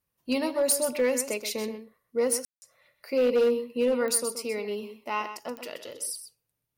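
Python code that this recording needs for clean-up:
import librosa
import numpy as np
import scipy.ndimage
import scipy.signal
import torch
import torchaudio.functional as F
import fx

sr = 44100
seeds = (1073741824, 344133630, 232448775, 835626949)

y = fx.fix_declip(x, sr, threshold_db=-18.0)
y = fx.fix_declick_ar(y, sr, threshold=10.0)
y = fx.fix_ambience(y, sr, seeds[0], print_start_s=6.26, print_end_s=6.76, start_s=2.45, end_s=2.62)
y = fx.fix_echo_inverse(y, sr, delay_ms=127, level_db=-10.5)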